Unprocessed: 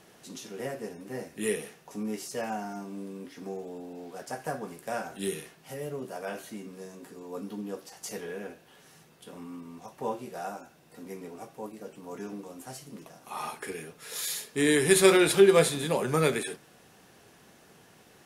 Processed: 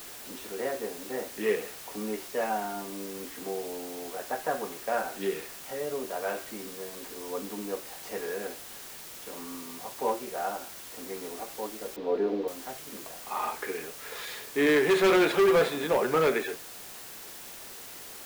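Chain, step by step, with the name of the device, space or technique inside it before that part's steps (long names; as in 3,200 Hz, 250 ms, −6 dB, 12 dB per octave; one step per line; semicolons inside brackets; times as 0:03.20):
aircraft radio (band-pass filter 330–2,300 Hz; hard clipping −23.5 dBFS, distortion −7 dB; white noise bed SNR 13 dB)
0:11.96–0:12.48: drawn EQ curve 130 Hz 0 dB, 460 Hz +12 dB, 1,100 Hz −1 dB, 4,000 Hz −4 dB, 8,800 Hz −27 dB
level +5 dB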